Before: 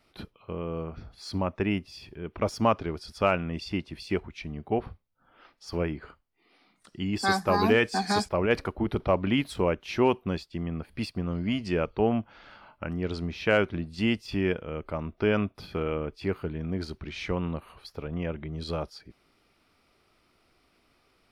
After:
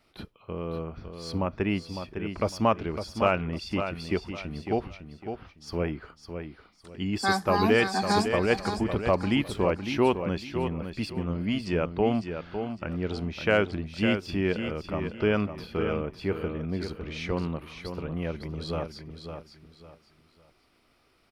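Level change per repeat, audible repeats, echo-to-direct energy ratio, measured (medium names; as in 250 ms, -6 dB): -10.5 dB, 3, -7.5 dB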